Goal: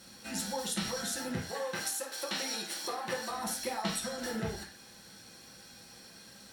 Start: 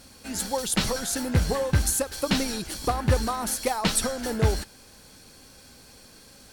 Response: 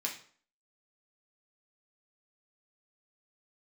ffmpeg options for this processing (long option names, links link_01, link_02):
-filter_complex "[0:a]asettb=1/sr,asplit=3[link_01][link_02][link_03];[link_01]atrim=end=1.384[link_04];[link_02]atrim=start=1.38:end=3.3,asetpts=PTS-STARTPTS,afade=type=in:duration=0.004:curve=qsin,afade=type=out:start_time=1.916:duration=0.004:curve=qsin,highpass=410[link_05];[link_03]atrim=start=3.296[link_06];[link_04][link_05]acrossfade=duration=0.004:curve1=hsin:curve2=qsin[link_07];[link_07][link_06]acrossfade=duration=0.004:curve1=qsin:curve2=hsin,acompressor=threshold=-30dB:ratio=4[link_08];[1:a]atrim=start_sample=2205,atrim=end_sample=4410,asetrate=34839,aresample=44100[link_09];[link_08][link_09]afir=irnorm=-1:irlink=0,volume=-5.5dB"